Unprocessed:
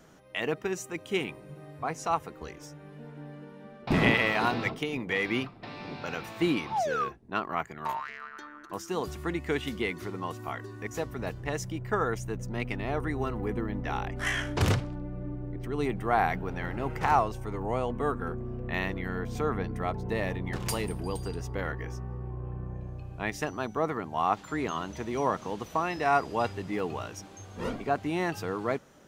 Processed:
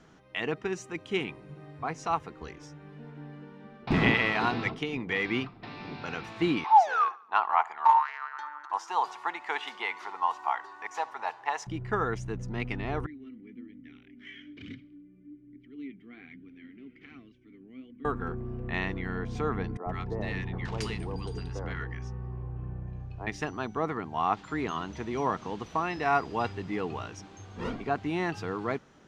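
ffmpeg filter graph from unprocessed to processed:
ffmpeg -i in.wav -filter_complex "[0:a]asettb=1/sr,asplit=3[link_01][link_02][link_03];[link_01]atrim=end=6.644[link_04];[link_02]atrim=start=6.64:end=11.67,asetpts=PTS-STARTPTS,afade=type=in:duration=0.004:curve=qsin,afade=type=out:start_time=5.026:duration=0.004:curve=qsin,highpass=frequency=870:width_type=q:width=5.9,aecho=1:1:71|142|213|284:0.0794|0.0405|0.0207|0.0105,atrim=end_sample=221823[link_05];[link_03]atrim=start=11.666[link_06];[link_04][link_05]acrossfade=duration=0.004:curve1=hsin:curve2=qsin[link_07];[link_07][link_06]acrossfade=duration=0.004:curve1=qsin:curve2=hsin,asettb=1/sr,asplit=3[link_08][link_09][link_10];[link_08]atrim=end=13.064[link_11];[link_09]atrim=start=13.06:end=18.05,asetpts=PTS-STARTPTS,afade=type=in:duration=0.004:curve=qsin,afade=type=out:start_time=4.986:duration=0.004:curve=qsin,asplit=3[link_12][link_13][link_14];[link_12]bandpass=frequency=270:width_type=q:width=8,volume=0dB[link_15];[link_13]bandpass=frequency=2290:width_type=q:width=8,volume=-6dB[link_16];[link_14]bandpass=frequency=3010:width_type=q:width=8,volume=-9dB[link_17];[link_15][link_16][link_17]amix=inputs=3:normalize=0,flanger=delay=0.5:depth=4.7:regen=45:speed=1.2:shape=sinusoidal[link_18];[link_10]atrim=start=18.046[link_19];[link_11][link_18]acrossfade=duration=0.004:curve1=hsin:curve2=qsin[link_20];[link_20][link_19]acrossfade=duration=0.004:curve1=qsin:curve2=hsin,asettb=1/sr,asplit=3[link_21][link_22][link_23];[link_21]atrim=end=19.774[link_24];[link_22]atrim=start=19.77:end=23.27,asetpts=PTS-STARTPTS,afade=type=in:duration=0.004:curve=qsin,afade=type=out:start_time=3.496:duration=0.004:curve=qsin,lowpass=9400,acrossover=split=300|1100[link_25][link_26][link_27];[link_25]adelay=90[link_28];[link_27]adelay=120[link_29];[link_28][link_26][link_29]amix=inputs=3:normalize=0,atrim=end_sample=154350[link_30];[link_23]atrim=start=23.266[link_31];[link_24][link_30]acrossfade=duration=0.004:curve1=hsin:curve2=qsin[link_32];[link_32][link_31]acrossfade=duration=0.004:curve1=qsin:curve2=hsin,lowpass=5300,equalizer=frequency=570:width=3.9:gain=-6.5" out.wav

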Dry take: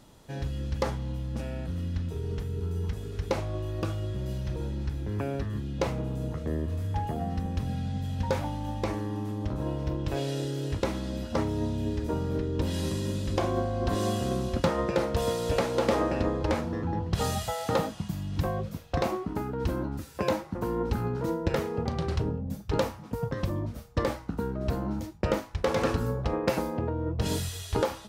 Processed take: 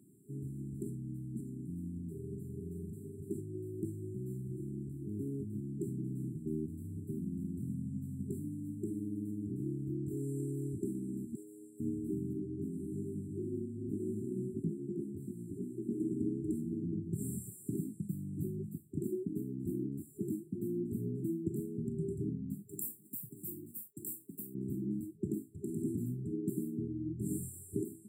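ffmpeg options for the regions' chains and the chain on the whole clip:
ffmpeg -i in.wav -filter_complex "[0:a]asettb=1/sr,asplit=3[link_01][link_02][link_03];[link_01]atrim=end=11.354[link_04];[link_02]atrim=start=11.35:end=11.8,asetpts=PTS-STARTPTS,afade=type=in:duration=0.004:curve=qsin,afade=type=out:start_time=0.446:duration=0.004:curve=qsin,highpass=780,aecho=1:1:2.3:0.48,atrim=end_sample=19845[link_05];[link_03]atrim=start=11.796[link_06];[link_04][link_05]acrossfade=duration=0.004:curve1=hsin:curve2=qsin[link_07];[link_07][link_06]acrossfade=duration=0.004:curve1=qsin:curve2=hsin,asettb=1/sr,asplit=3[link_08][link_09][link_10];[link_08]atrim=end=12.334[link_11];[link_09]atrim=start=12.33:end=16,asetpts=PTS-STARTPTS,afade=type=in:duration=0.004:curve=qsin,afade=type=out:start_time=3.666:duration=0.004:curve=qsin,acrossover=split=2700[link_12][link_13];[link_13]acompressor=threshold=-52dB:ratio=4:attack=1:release=60[link_14];[link_12][link_14]amix=inputs=2:normalize=0,flanger=delay=18:depth=4.1:speed=2.6[link_15];[link_10]atrim=start=15.996[link_16];[link_11][link_15]acrossfade=duration=0.004:curve1=hsin:curve2=qsin[link_17];[link_17][link_16]acrossfade=duration=0.004:curve1=qsin:curve2=hsin,asettb=1/sr,asplit=3[link_18][link_19][link_20];[link_18]atrim=end=22.674[link_21];[link_19]atrim=start=22.67:end=24.55,asetpts=PTS-STARTPTS,afade=type=in:duration=0.004:curve=qsin,afade=type=out:start_time=1.876:duration=0.004:curve=qsin,aemphasis=mode=production:type=riaa,aeval=exprs='sgn(val(0))*max(abs(val(0))-0.00188,0)':channel_layout=same,acrossover=split=180|3000[link_22][link_23][link_24];[link_23]acompressor=threshold=-39dB:ratio=3:attack=3.2:release=140:knee=2.83:detection=peak[link_25];[link_22][link_25][link_24]amix=inputs=3:normalize=0[link_26];[link_20]atrim=start=24.546[link_27];[link_21][link_26]acrossfade=duration=0.004:curve1=hsin:curve2=qsin[link_28];[link_28][link_27]acrossfade=duration=0.004:curve1=qsin:curve2=hsin,highpass=frequency=130:width=0.5412,highpass=frequency=130:width=1.3066,afftfilt=real='re*(1-between(b*sr/4096,410,7300))':imag='im*(1-between(b*sr/4096,410,7300))':win_size=4096:overlap=0.75,equalizer=frequency=12000:width_type=o:width=0.34:gain=-2,volume=-3.5dB" out.wav

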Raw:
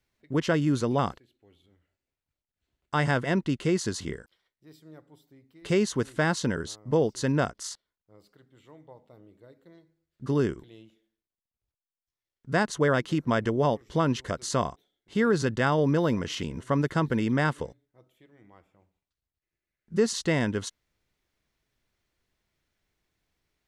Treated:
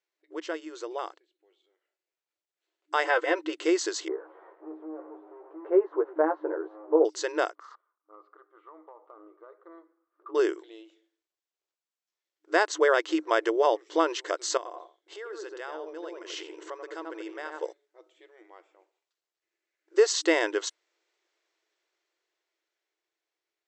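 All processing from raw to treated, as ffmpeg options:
ffmpeg -i in.wav -filter_complex "[0:a]asettb=1/sr,asplit=3[link_01][link_02][link_03];[link_01]atrim=end=3.044[link_04];[link_02]atrim=start=3.04:end=3.53,asetpts=PTS-STARTPTS,afade=type=in:duration=0.004:curve=qsin,afade=type=out:start_time=0.486:duration=0.004:curve=qsin,aecho=1:1:3.9:0.67,atrim=end_sample=21609,acrossover=split=3500[link_05][link_06];[link_06]acompressor=threshold=-54dB:ratio=4:attack=1:release=60[link_07];[link_05][link_07]amix=inputs=2:normalize=0[link_08];[link_03]atrim=start=3.526[link_09];[link_04][link_08]acrossfade=duration=0.004:curve1=hsin:curve2=qsin[link_10];[link_10][link_09]acrossfade=duration=0.004:curve1=qsin:curve2=hsin,asettb=1/sr,asplit=3[link_11][link_12][link_13];[link_11]atrim=end=4.084[link_14];[link_12]atrim=start=4.08:end=7.05,asetpts=PTS-STARTPTS,afade=type=in:duration=0.004:curve=qsin,afade=type=out:start_time=2.966:duration=0.004:curve=qsin,aeval=exprs='val(0)+0.5*0.00944*sgn(val(0))':channel_layout=same,lowpass=frequency=1100:width=0.5412,lowpass=frequency=1100:width=1.3066,asplit=2[link_15][link_16];[link_16]adelay=13,volume=-3.5dB[link_17];[link_15][link_17]amix=inputs=2:normalize=0,atrim=end_sample=130977[link_18];[link_13]atrim=start=7.046[link_19];[link_14][link_18]acrossfade=duration=0.004:curve1=hsin:curve2=qsin[link_20];[link_20][link_19]acrossfade=duration=0.004:curve1=qsin:curve2=hsin,asettb=1/sr,asplit=3[link_21][link_22][link_23];[link_21]atrim=end=7.554[link_24];[link_22]atrim=start=7.55:end=10.35,asetpts=PTS-STARTPTS,afade=type=in:duration=0.004:curve=qsin,afade=type=out:start_time=2.796:duration=0.004:curve=qsin,lowpass=frequency=1200:width_type=q:width=13,acompressor=threshold=-45dB:ratio=6:attack=3.2:release=140:knee=1:detection=peak[link_25];[link_23]atrim=start=10.346[link_26];[link_24][link_25]acrossfade=duration=0.004:curve1=hsin:curve2=qsin[link_27];[link_27][link_26]acrossfade=duration=0.004:curve1=qsin:curve2=hsin,asettb=1/sr,asplit=3[link_28][link_29][link_30];[link_28]atrim=end=14.574[link_31];[link_29]atrim=start=14.57:end=17.63,asetpts=PTS-STARTPTS,afade=type=in:duration=0.004:curve=qsin,afade=type=out:start_time=3.056:duration=0.004:curve=qsin,asplit=2[link_32][link_33];[link_33]adelay=86,lowpass=frequency=1200:poles=1,volume=-3.5dB,asplit=2[link_34][link_35];[link_35]adelay=86,lowpass=frequency=1200:poles=1,volume=0.23,asplit=2[link_36][link_37];[link_37]adelay=86,lowpass=frequency=1200:poles=1,volume=0.23[link_38];[link_32][link_34][link_36][link_38]amix=inputs=4:normalize=0,atrim=end_sample=134946,acompressor=threshold=-35dB:ratio=12:attack=3.2:release=140:knee=1:detection=peak[link_39];[link_30]atrim=start=17.626[link_40];[link_31][link_39]acrossfade=duration=0.004:curve1=hsin:curve2=qsin[link_41];[link_41][link_40]acrossfade=duration=0.004:curve1=qsin:curve2=hsin,afftfilt=real='re*between(b*sr/4096,310,8100)':imag='im*between(b*sr/4096,310,8100)':win_size=4096:overlap=0.75,dynaudnorm=framelen=370:gausssize=13:maxgain=16dB,volume=-8dB" out.wav

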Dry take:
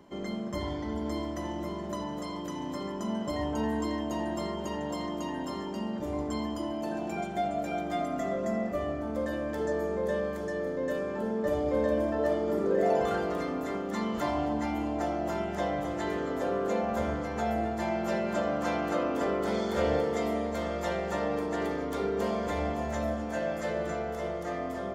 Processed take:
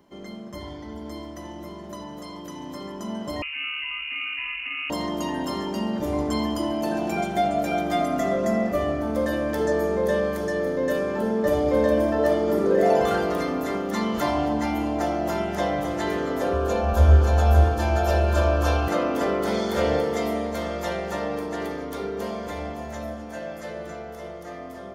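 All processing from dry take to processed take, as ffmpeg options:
ffmpeg -i in.wav -filter_complex "[0:a]asettb=1/sr,asplit=3[link_01][link_02][link_03];[link_01]atrim=end=3.424[link_04];[link_02]atrim=start=3.42:end=4.9,asetpts=PTS-STARTPTS,afade=type=in:duration=0.004:curve=qsin,afade=type=out:start_time=1.476:duration=0.004:curve=qsin,highpass=frequency=520:poles=1,lowpass=frequency=2600:width_type=q:width=0.5098,lowpass=frequency=2600:width_type=q:width=0.6013,lowpass=frequency=2600:width_type=q:width=0.9,lowpass=frequency=2600:width_type=q:width=2.563,afreqshift=-3100[link_05];[link_03]atrim=start=4.896[link_06];[link_04][link_05]acrossfade=duration=0.004:curve1=hsin:curve2=qsin[link_07];[link_07][link_06]acrossfade=duration=0.004:curve1=qsin:curve2=hsin,asettb=1/sr,asplit=3[link_08][link_09][link_10];[link_08]atrim=end=16.534[link_11];[link_09]atrim=start=16.53:end=18.88,asetpts=PTS-STARTPTS,afade=type=in:duration=0.004:curve=qsin,afade=type=out:start_time=2.346:duration=0.004:curve=qsin,asuperstop=centerf=2000:order=8:qfactor=6.7,lowshelf=frequency=110:width_type=q:width=3:gain=12,aecho=1:1:579:0.668,atrim=end_sample=103635[link_12];[link_10]atrim=start=18.876[link_13];[link_11][link_12]acrossfade=duration=0.004:curve1=hsin:curve2=qsin[link_14];[link_14][link_13]acrossfade=duration=0.004:curve1=qsin:curve2=hsin,equalizer=frequency=7500:width_type=o:width=0.26:gain=-7,dynaudnorm=framelen=270:gausssize=31:maxgain=11.5dB,highshelf=frequency=5000:gain=8,volume=-3.5dB" out.wav

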